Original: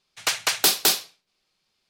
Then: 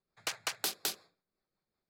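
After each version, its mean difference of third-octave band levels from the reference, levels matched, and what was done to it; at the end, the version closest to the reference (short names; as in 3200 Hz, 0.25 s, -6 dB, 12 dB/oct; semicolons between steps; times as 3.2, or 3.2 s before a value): 5.0 dB: Wiener smoothing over 15 samples; rotary speaker horn 5.5 Hz; compressor 4:1, threshold -28 dBFS, peak gain reduction 11 dB; gain -4.5 dB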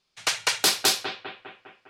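4.0 dB: LPF 9900 Hz 12 dB/oct; on a send: analogue delay 0.202 s, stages 4096, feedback 56%, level -6.5 dB; on the sum: gain -1 dB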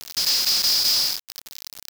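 10.0 dB: per-bin compression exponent 0.4; band-pass 5000 Hz, Q 8.5; companded quantiser 2-bit; gain +6.5 dB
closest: second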